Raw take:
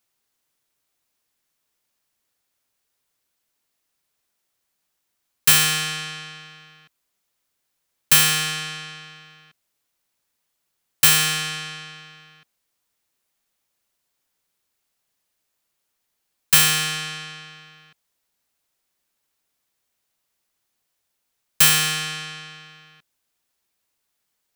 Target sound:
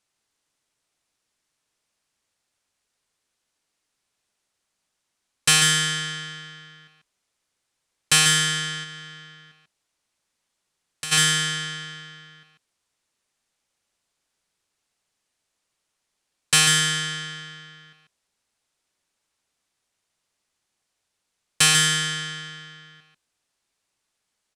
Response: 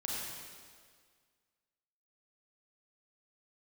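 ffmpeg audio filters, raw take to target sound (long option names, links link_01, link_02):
-filter_complex "[0:a]aecho=1:1:142:0.447,asplit=3[link_01][link_02][link_03];[link_01]afade=type=out:start_time=8.83:duration=0.02[link_04];[link_02]acompressor=threshold=-35dB:ratio=2.5,afade=type=in:start_time=8.83:duration=0.02,afade=type=out:start_time=11.11:duration=0.02[link_05];[link_03]afade=type=in:start_time=11.11:duration=0.02[link_06];[link_04][link_05][link_06]amix=inputs=3:normalize=0,lowpass=frequency=10000:width=0.5412,lowpass=frequency=10000:width=1.3066"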